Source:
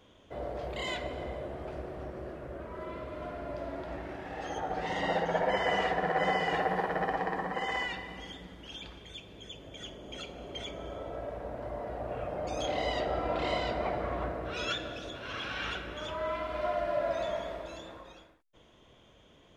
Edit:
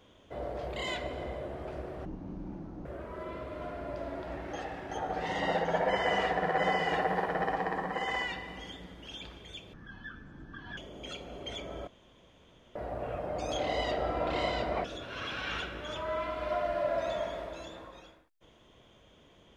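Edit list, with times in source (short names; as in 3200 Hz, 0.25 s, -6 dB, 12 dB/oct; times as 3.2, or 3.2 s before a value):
2.05–2.46 speed 51%
4.14–4.52 reverse
9.34–9.86 speed 50%
10.96–11.84 room tone
13.93–14.97 cut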